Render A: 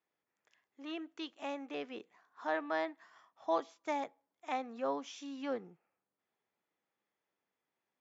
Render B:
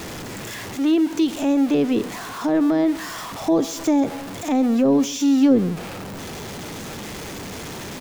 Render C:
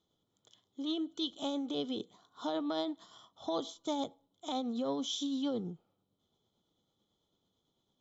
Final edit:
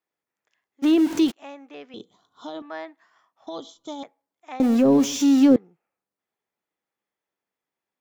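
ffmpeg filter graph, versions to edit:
ffmpeg -i take0.wav -i take1.wav -i take2.wav -filter_complex "[1:a]asplit=2[link_01][link_02];[2:a]asplit=2[link_03][link_04];[0:a]asplit=5[link_05][link_06][link_07][link_08][link_09];[link_05]atrim=end=0.84[link_10];[link_01]atrim=start=0.82:end=1.32[link_11];[link_06]atrim=start=1.3:end=1.942[link_12];[link_03]atrim=start=1.938:end=2.622[link_13];[link_07]atrim=start=2.618:end=3.472[link_14];[link_04]atrim=start=3.468:end=4.032[link_15];[link_08]atrim=start=4.028:end=4.602[link_16];[link_02]atrim=start=4.598:end=5.562[link_17];[link_09]atrim=start=5.558[link_18];[link_10][link_11]acrossfade=duration=0.02:curve1=tri:curve2=tri[link_19];[link_19][link_12]acrossfade=duration=0.02:curve1=tri:curve2=tri[link_20];[link_20][link_13]acrossfade=duration=0.004:curve1=hsin:curve2=hsin[link_21];[link_21][link_14]acrossfade=duration=0.004:curve1=hsin:curve2=hsin[link_22];[link_22][link_15]acrossfade=duration=0.004:curve1=hsin:curve2=hsin[link_23];[link_23][link_16]acrossfade=duration=0.004:curve1=hsin:curve2=hsin[link_24];[link_24][link_17]acrossfade=duration=0.004:curve1=hsin:curve2=hsin[link_25];[link_25][link_18]acrossfade=duration=0.004:curve1=hsin:curve2=hsin" out.wav

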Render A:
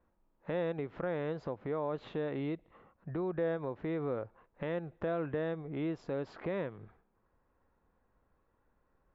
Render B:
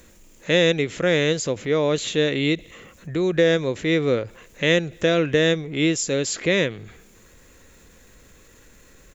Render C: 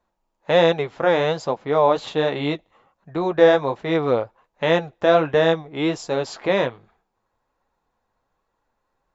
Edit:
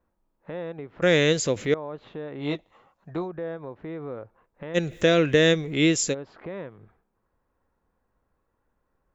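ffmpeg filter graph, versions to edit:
ffmpeg -i take0.wav -i take1.wav -i take2.wav -filter_complex "[1:a]asplit=2[link_01][link_02];[0:a]asplit=4[link_03][link_04][link_05][link_06];[link_03]atrim=end=1.022[link_07];[link_01]atrim=start=1.018:end=1.742[link_08];[link_04]atrim=start=1.738:end=2.61[link_09];[2:a]atrim=start=2.37:end=3.29[link_10];[link_05]atrim=start=3.05:end=4.78[link_11];[link_02]atrim=start=4.74:end=6.15[link_12];[link_06]atrim=start=6.11[link_13];[link_07][link_08]acrossfade=duration=0.004:curve1=hsin:curve2=hsin[link_14];[link_14][link_09]acrossfade=duration=0.004:curve1=hsin:curve2=hsin[link_15];[link_15][link_10]acrossfade=duration=0.24:curve1=tri:curve2=tri[link_16];[link_16][link_11]acrossfade=duration=0.24:curve1=tri:curve2=tri[link_17];[link_17][link_12]acrossfade=duration=0.04:curve1=tri:curve2=tri[link_18];[link_18][link_13]acrossfade=duration=0.04:curve1=tri:curve2=tri" out.wav

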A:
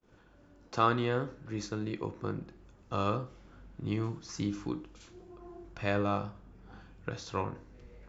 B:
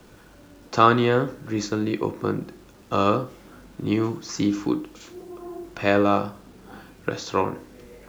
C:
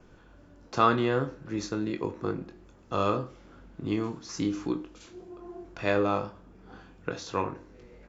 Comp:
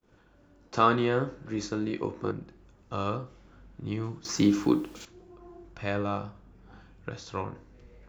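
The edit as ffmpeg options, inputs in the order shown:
ffmpeg -i take0.wav -i take1.wav -i take2.wav -filter_complex "[0:a]asplit=3[link_01][link_02][link_03];[link_01]atrim=end=0.742[link_04];[2:a]atrim=start=0.738:end=2.312[link_05];[link_02]atrim=start=2.308:end=4.252[link_06];[1:a]atrim=start=4.248:end=5.052[link_07];[link_03]atrim=start=5.048[link_08];[link_04][link_05]acrossfade=duration=0.004:curve1=hsin:curve2=hsin[link_09];[link_09][link_06]acrossfade=duration=0.004:curve1=hsin:curve2=hsin[link_10];[link_10][link_07]acrossfade=duration=0.004:curve1=hsin:curve2=hsin[link_11];[link_11][link_08]acrossfade=duration=0.004:curve1=hsin:curve2=hsin" out.wav

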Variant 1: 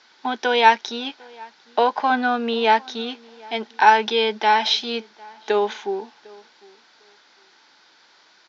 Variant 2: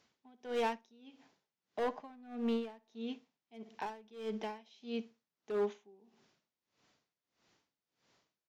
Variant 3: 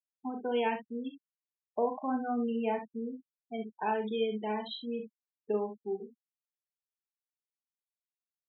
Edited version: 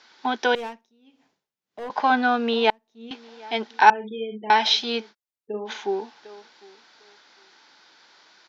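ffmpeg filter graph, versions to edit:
ffmpeg -i take0.wav -i take1.wav -i take2.wav -filter_complex "[1:a]asplit=2[link_01][link_02];[2:a]asplit=2[link_03][link_04];[0:a]asplit=5[link_05][link_06][link_07][link_08][link_09];[link_05]atrim=end=0.552[link_10];[link_01]atrim=start=0.548:end=1.902[link_11];[link_06]atrim=start=1.898:end=2.702[link_12];[link_02]atrim=start=2.698:end=3.112[link_13];[link_07]atrim=start=3.108:end=3.902[link_14];[link_03]atrim=start=3.898:end=4.502[link_15];[link_08]atrim=start=4.498:end=5.15[link_16];[link_04]atrim=start=5.09:end=5.71[link_17];[link_09]atrim=start=5.65[link_18];[link_10][link_11]acrossfade=duration=0.004:curve1=hsin:curve2=hsin[link_19];[link_19][link_12]acrossfade=duration=0.004:curve1=hsin:curve2=hsin[link_20];[link_20][link_13]acrossfade=duration=0.004:curve1=hsin:curve2=hsin[link_21];[link_21][link_14]acrossfade=duration=0.004:curve1=hsin:curve2=hsin[link_22];[link_22][link_15]acrossfade=duration=0.004:curve1=hsin:curve2=hsin[link_23];[link_23][link_16]acrossfade=duration=0.004:curve1=hsin:curve2=hsin[link_24];[link_24][link_17]acrossfade=duration=0.06:curve1=tri:curve2=tri[link_25];[link_25][link_18]acrossfade=duration=0.06:curve1=tri:curve2=tri" out.wav

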